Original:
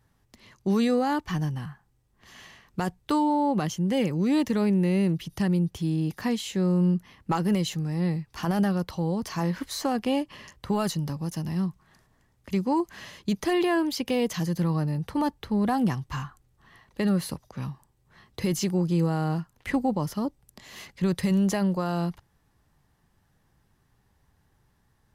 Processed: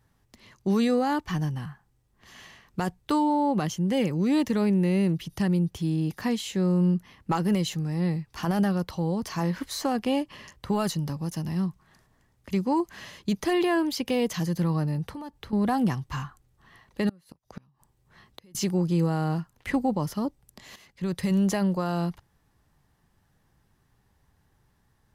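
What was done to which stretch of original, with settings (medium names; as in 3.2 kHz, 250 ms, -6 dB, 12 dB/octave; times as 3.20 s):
15.09–15.53 s: compression 5:1, threshold -36 dBFS
17.09–18.55 s: inverted gate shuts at -26 dBFS, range -30 dB
20.76–21.39 s: fade in, from -14 dB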